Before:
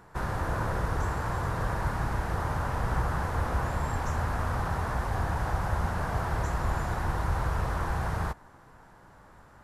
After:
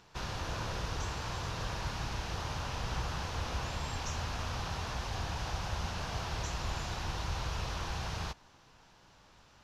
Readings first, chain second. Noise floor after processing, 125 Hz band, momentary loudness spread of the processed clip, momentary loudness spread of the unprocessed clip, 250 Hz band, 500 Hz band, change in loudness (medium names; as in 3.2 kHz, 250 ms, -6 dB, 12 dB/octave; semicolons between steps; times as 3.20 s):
-61 dBFS, -8.0 dB, 1 LU, 1 LU, -8.0 dB, -8.0 dB, -6.5 dB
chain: high-order bell 4 kHz +15.5 dB; trim -8 dB